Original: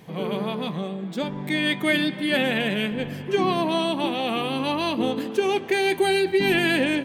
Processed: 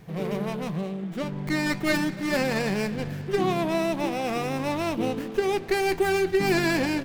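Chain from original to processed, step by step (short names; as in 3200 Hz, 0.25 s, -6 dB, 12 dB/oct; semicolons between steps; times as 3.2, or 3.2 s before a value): ten-band EQ 125 Hz -3 dB, 250 Hz -11 dB, 500 Hz -7 dB, 1000 Hz -11 dB, 2000 Hz -4 dB, 4000 Hz -10 dB, 8000 Hz -7 dB; running maximum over 9 samples; gain +8.5 dB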